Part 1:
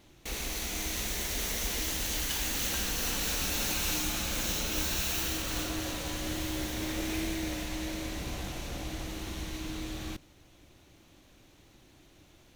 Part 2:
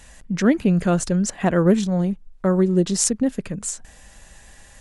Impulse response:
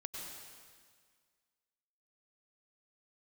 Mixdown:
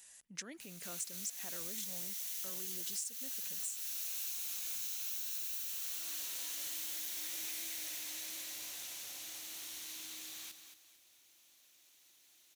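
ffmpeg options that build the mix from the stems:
-filter_complex "[0:a]adelay=350,volume=1.5dB,asplit=2[link_01][link_02];[link_02]volume=-9dB[link_03];[1:a]lowshelf=frequency=470:gain=7,alimiter=limit=-11dB:level=0:latency=1:release=58,volume=-5.5dB,asplit=2[link_04][link_05];[link_05]apad=whole_len=569168[link_06];[link_01][link_06]sidechaincompress=threshold=-40dB:ratio=4:attack=5.1:release=636[link_07];[link_03]aecho=0:1:225|450|675|900:1|0.3|0.09|0.027[link_08];[link_07][link_04][link_08]amix=inputs=3:normalize=0,aderivative,acompressor=threshold=-37dB:ratio=10"

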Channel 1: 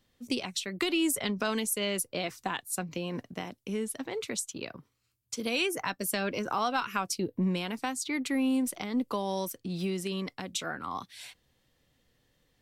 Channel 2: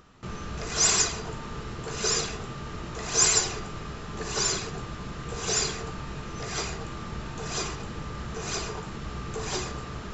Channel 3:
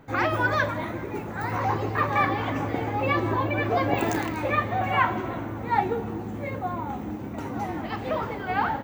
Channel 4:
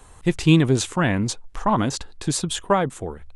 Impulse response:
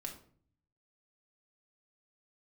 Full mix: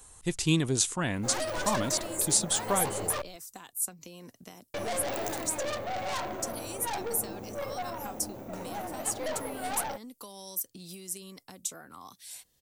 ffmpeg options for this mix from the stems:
-filter_complex "[0:a]acrossover=split=1400|6700[link_01][link_02][link_03];[link_01]acompressor=threshold=-42dB:ratio=4[link_04];[link_02]acompressor=threshold=-56dB:ratio=4[link_05];[link_03]acompressor=threshold=-38dB:ratio=4[link_06];[link_04][link_05][link_06]amix=inputs=3:normalize=0,adelay=1100,volume=-4dB[link_07];[2:a]equalizer=frequency=590:width_type=o:width=0.75:gain=14.5,aeval=exprs='(tanh(12.6*val(0)+0.5)-tanh(0.5))/12.6':channel_layout=same,adelay=1150,volume=-9dB,asplit=3[link_08][link_09][link_10];[link_08]atrim=end=3.22,asetpts=PTS-STARTPTS,afade=type=out:start_time=3.216:duration=0.004:curve=hsin[link_11];[link_09]atrim=start=3.22:end=4.74,asetpts=PTS-STARTPTS,volume=0[link_12];[link_10]atrim=start=4.74,asetpts=PTS-STARTPTS,afade=type=in:duration=0.004:curve=hsin[link_13];[link_11][link_12][link_13]concat=n=3:v=0:a=1[link_14];[3:a]volume=-10dB[link_15];[link_07][link_14][link_15]amix=inputs=3:normalize=0,bass=frequency=250:gain=-1,treble=frequency=4000:gain=14"

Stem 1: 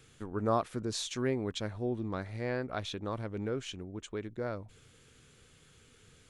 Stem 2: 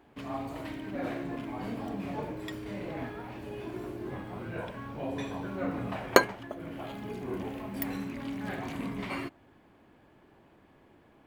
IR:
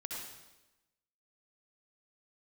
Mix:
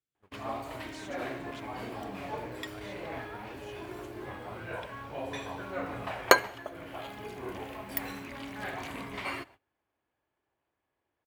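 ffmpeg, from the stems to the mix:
-filter_complex "[0:a]flanger=delay=2.8:depth=9.6:regen=30:speed=1.7:shape=sinusoidal,volume=-11.5dB,asplit=2[link_01][link_02];[link_02]volume=-15.5dB[link_03];[1:a]equalizer=frequency=200:width_type=o:width=1.8:gain=-13,adelay=150,volume=2.5dB,asplit=2[link_04][link_05];[link_05]volume=-22.5dB[link_06];[2:a]atrim=start_sample=2205[link_07];[link_03][link_06]amix=inputs=2:normalize=0[link_08];[link_08][link_07]afir=irnorm=-1:irlink=0[link_09];[link_01][link_04][link_09]amix=inputs=3:normalize=0,highpass=55,agate=range=-22dB:threshold=-53dB:ratio=16:detection=peak"

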